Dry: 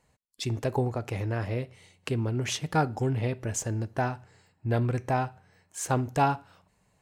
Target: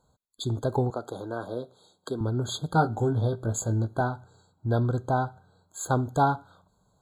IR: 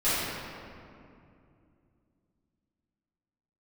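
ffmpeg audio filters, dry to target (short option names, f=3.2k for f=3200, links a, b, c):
-filter_complex "[0:a]asettb=1/sr,asplit=3[a][b][c];[a]atrim=end=0.904[d];[b]atrim=start=0.9:end=2.21,asetpts=PTS-STARTPTS,afade=t=in:d=0.004:c=qsin,afade=t=out:st=1.306:d=0.004:c=qsin,highpass=260[e];[c]atrim=start=2.206[f];[d][e]acrossfade=d=0.004:c1=hsin:c2=qsin[g];[g][f]acrossfade=d=0.004:c1=qsin:c2=hsin,asettb=1/sr,asplit=3[h][i][j];[h]atrim=end=2.734[k];[i]atrim=start=2.73:end=4.01,asetpts=PTS-STARTPTS,afade=t=in:d=0.004:c=qsin,afade=t=out:st=1.276:d=0.004:c=qsin,asplit=2[l][m];[m]adelay=18,volume=-6dB[n];[l][n]amix=inputs=2:normalize=0,atrim=end_sample=56448[o];[j]atrim=start=4.006[p];[k][o]acrossfade=d=0.004:c1=hsin:c2=qsin[q];[q][p]acrossfade=d=0.004:c1=qsin:c2=hsin,afftfilt=real='re*eq(mod(floor(b*sr/1024/1600),2),0)':imag='im*eq(mod(floor(b*sr/1024/1600),2),0)':win_size=1024:overlap=0.75,volume=1.5dB"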